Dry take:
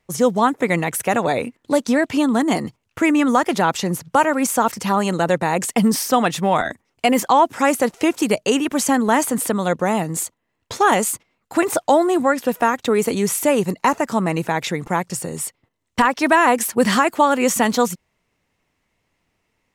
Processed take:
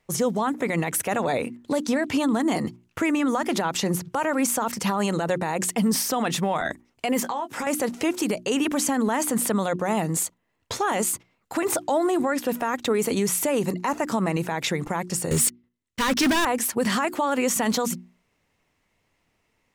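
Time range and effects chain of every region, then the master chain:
7.23–7.67 s: high-pass 120 Hz + compression 8:1, threshold -26 dBFS + doubling 17 ms -8 dB
15.31–16.45 s: waveshaping leveller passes 5 + peaking EQ 760 Hz -10 dB 0.86 oct + slow attack 150 ms
whole clip: hum notches 60/120/180/240/300/360 Hz; peak limiter -15 dBFS

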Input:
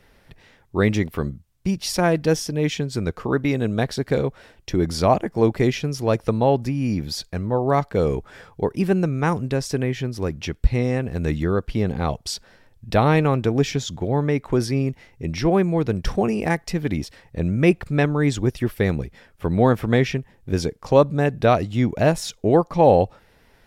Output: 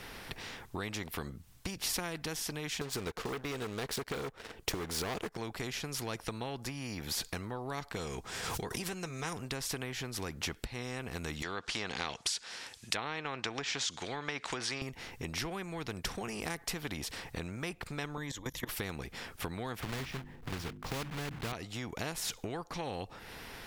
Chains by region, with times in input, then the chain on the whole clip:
2.81–5.37 s: peaking EQ 440 Hz +13.5 dB 0.56 oct + waveshaping leveller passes 2
7.96–9.33 s: peaking EQ 6.3 kHz +7.5 dB 1.3 oct + comb of notches 290 Hz + swell ahead of each attack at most 110 dB/s
11.42–14.82 s: low-pass that closes with the level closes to 1.5 kHz, closed at -14 dBFS + frequency weighting ITU-R 468
18.17–18.69 s: rippled EQ curve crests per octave 1.1, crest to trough 12 dB + level held to a coarse grid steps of 20 dB
19.80–21.53 s: block-companded coder 3-bit + tone controls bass +13 dB, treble -13 dB + hum notches 50/100/150/200/250/300/350 Hz
whole clip: peaking EQ 590 Hz -9 dB 0.25 oct; compression 6:1, threshold -32 dBFS; spectrum-flattening compressor 2:1; trim +1.5 dB

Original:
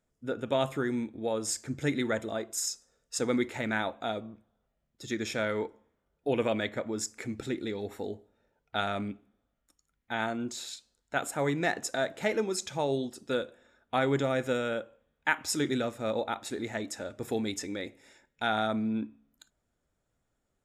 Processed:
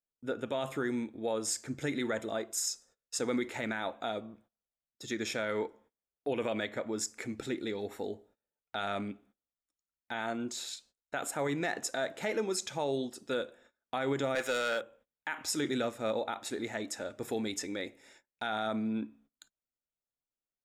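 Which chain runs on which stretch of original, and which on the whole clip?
14.35–14.81 s: high-pass 1.1 kHz 6 dB/octave + waveshaping leveller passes 2
whole clip: gate -59 dBFS, range -22 dB; peaking EQ 68 Hz -7 dB 2.9 oct; peak limiter -22.5 dBFS

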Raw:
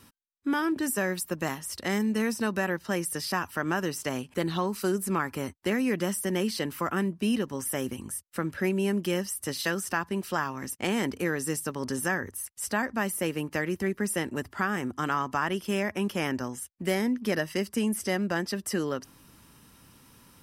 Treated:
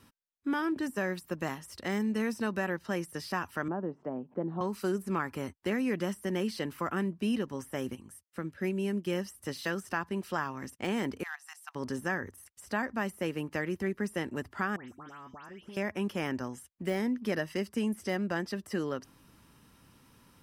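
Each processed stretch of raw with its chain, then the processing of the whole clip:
3.68–4.61 s: Chebyshev band-pass 180–770 Hz + upward compressor, threshold -42 dBFS
7.95–9.07 s: high-pass 53 Hz + dynamic bell 980 Hz, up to -5 dB, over -43 dBFS, Q 0.84 + upward expansion, over -40 dBFS
11.23–11.75 s: level held to a coarse grid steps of 15 dB + hard clipper -22 dBFS + brick-wall FIR high-pass 670 Hz
14.76–15.77 s: compression 20:1, threshold -38 dBFS + phase dispersion highs, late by 131 ms, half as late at 2.5 kHz
whole clip: de-esser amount 70%; treble shelf 5.1 kHz -6.5 dB; trim -3.5 dB

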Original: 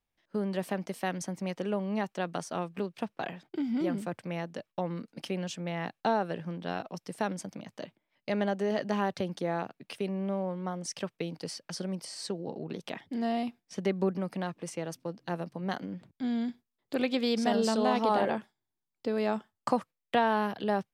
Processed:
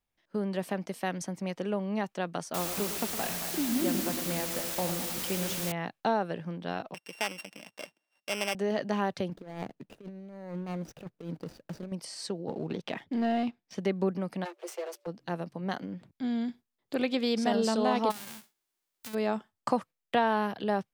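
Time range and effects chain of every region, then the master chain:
2.54–5.72 s: backward echo that repeats 115 ms, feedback 68%, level -12 dB + feedback delay 109 ms, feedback 60%, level -10 dB + word length cut 6-bit, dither triangular
6.94–8.55 s: sorted samples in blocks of 16 samples + frequency weighting A
9.30–11.92 s: median filter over 41 samples + compressor with a negative ratio -38 dBFS, ratio -0.5
12.48–13.75 s: low-pass 4.6 kHz + waveshaping leveller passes 1
14.44–15.06 s: comb filter that takes the minimum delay 7.9 ms + steep high-pass 340 Hz 96 dB/octave + whistle 580 Hz -69 dBFS
18.10–19.13 s: formants flattened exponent 0.1 + compression 10:1, threshold -39 dBFS
whole clip: none

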